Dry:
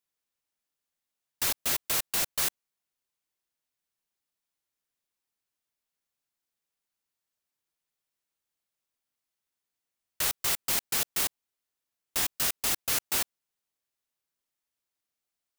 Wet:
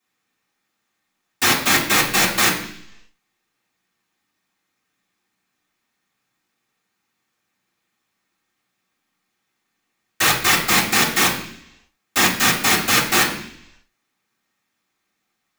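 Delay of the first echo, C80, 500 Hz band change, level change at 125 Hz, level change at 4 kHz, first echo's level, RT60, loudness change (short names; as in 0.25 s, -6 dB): none, 11.0 dB, +15.5 dB, +18.0 dB, +13.5 dB, none, 0.70 s, +11.5 dB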